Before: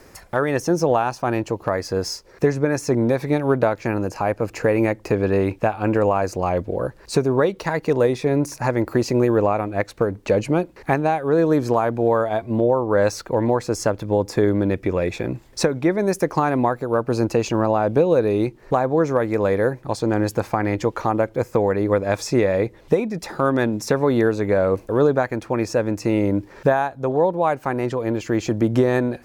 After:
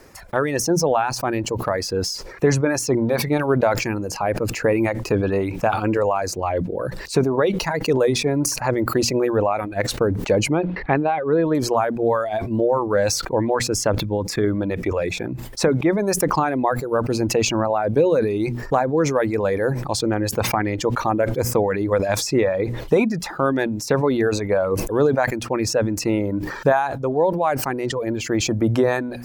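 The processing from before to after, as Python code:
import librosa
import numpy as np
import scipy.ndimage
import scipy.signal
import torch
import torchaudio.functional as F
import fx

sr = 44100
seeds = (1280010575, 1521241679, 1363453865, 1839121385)

y = fx.hum_notches(x, sr, base_hz=60, count=4)
y = fx.dereverb_blind(y, sr, rt60_s=1.2)
y = fx.lowpass(y, sr, hz=3500.0, slope=24, at=(10.5, 11.55))
y = fx.peak_eq(y, sr, hz=620.0, db=-5.0, octaves=1.7, at=(14.01, 14.44))
y = fx.sustainer(y, sr, db_per_s=55.0)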